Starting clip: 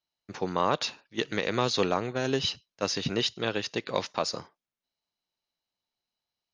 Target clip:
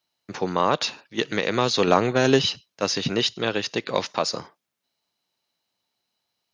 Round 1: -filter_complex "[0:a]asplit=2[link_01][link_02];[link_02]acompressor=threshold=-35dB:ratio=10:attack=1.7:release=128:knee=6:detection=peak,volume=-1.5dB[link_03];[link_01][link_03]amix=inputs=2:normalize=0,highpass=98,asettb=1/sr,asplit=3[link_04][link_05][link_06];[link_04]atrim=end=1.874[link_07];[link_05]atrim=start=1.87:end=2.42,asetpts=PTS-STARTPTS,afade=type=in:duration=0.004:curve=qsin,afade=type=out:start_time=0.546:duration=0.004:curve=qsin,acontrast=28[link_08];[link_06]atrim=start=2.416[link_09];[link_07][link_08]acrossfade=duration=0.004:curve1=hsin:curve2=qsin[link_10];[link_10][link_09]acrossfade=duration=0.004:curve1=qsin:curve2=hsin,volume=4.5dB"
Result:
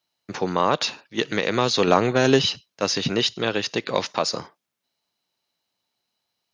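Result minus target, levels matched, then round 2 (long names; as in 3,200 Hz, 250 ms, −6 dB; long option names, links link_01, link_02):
downward compressor: peak gain reduction −10 dB
-filter_complex "[0:a]asplit=2[link_01][link_02];[link_02]acompressor=threshold=-46dB:ratio=10:attack=1.7:release=128:knee=6:detection=peak,volume=-1.5dB[link_03];[link_01][link_03]amix=inputs=2:normalize=0,highpass=98,asettb=1/sr,asplit=3[link_04][link_05][link_06];[link_04]atrim=end=1.874[link_07];[link_05]atrim=start=1.87:end=2.42,asetpts=PTS-STARTPTS,afade=type=in:duration=0.004:curve=qsin,afade=type=out:start_time=0.546:duration=0.004:curve=qsin,acontrast=28[link_08];[link_06]atrim=start=2.416[link_09];[link_07][link_08]acrossfade=duration=0.004:curve1=hsin:curve2=qsin[link_10];[link_10][link_09]acrossfade=duration=0.004:curve1=qsin:curve2=hsin,volume=4.5dB"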